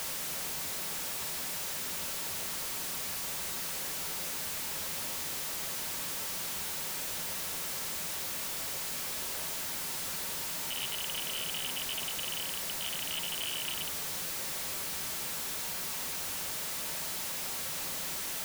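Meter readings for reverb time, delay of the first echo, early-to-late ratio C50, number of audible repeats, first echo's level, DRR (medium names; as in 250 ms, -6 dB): 0.55 s, no echo, 14.5 dB, no echo, no echo, 7.5 dB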